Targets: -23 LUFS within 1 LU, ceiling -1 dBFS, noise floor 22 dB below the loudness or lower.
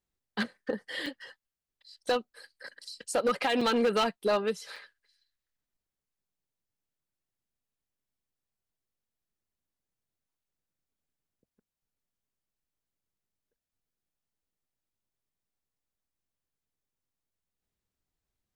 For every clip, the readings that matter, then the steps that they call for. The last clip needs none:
clipped 0.4%; flat tops at -21.0 dBFS; dropouts 3; longest dropout 4.2 ms; loudness -30.5 LUFS; peak -21.0 dBFS; loudness target -23.0 LUFS
-> clip repair -21 dBFS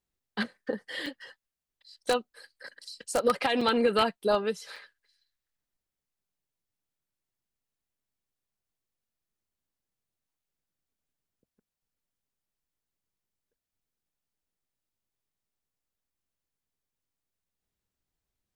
clipped 0.0%; dropouts 3; longest dropout 4.2 ms
-> interpolate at 1.06/3.61/4.76, 4.2 ms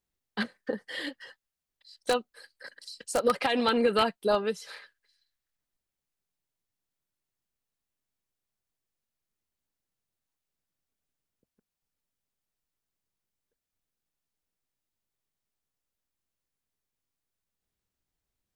dropouts 0; loudness -29.0 LUFS; peak -12.0 dBFS; loudness target -23.0 LUFS
-> gain +6 dB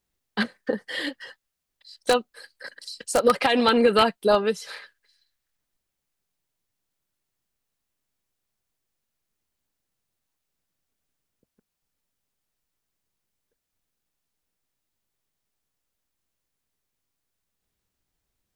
loudness -23.0 LUFS; peak -6.0 dBFS; noise floor -82 dBFS

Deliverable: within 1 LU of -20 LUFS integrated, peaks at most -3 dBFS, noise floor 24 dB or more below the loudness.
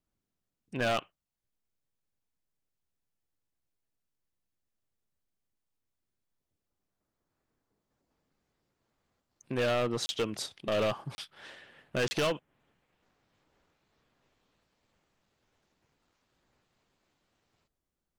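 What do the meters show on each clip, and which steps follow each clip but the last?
clipped 0.9%; flat tops at -25.0 dBFS; dropouts 3; longest dropout 30 ms; loudness -32.0 LUFS; peak -25.0 dBFS; loudness target -20.0 LUFS
-> clip repair -25 dBFS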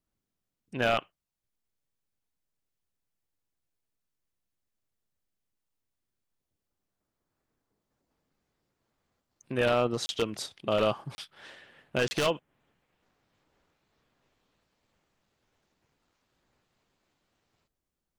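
clipped 0.0%; dropouts 3; longest dropout 30 ms
-> interpolate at 10.06/11.15/12.08, 30 ms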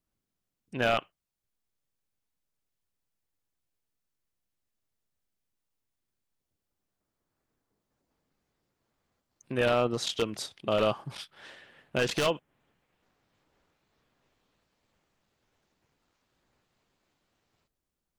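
dropouts 0; loudness -29.5 LUFS; peak -16.0 dBFS; loudness target -20.0 LUFS
-> gain +9.5 dB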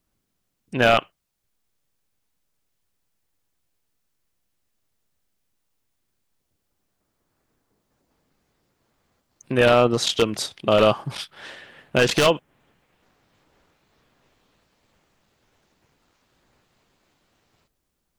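loudness -20.5 LUFS; peak -6.5 dBFS; noise floor -76 dBFS

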